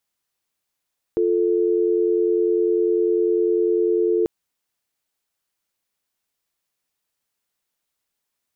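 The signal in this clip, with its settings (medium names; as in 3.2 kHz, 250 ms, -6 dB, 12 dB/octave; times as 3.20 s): call progress tone dial tone, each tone -19 dBFS 3.09 s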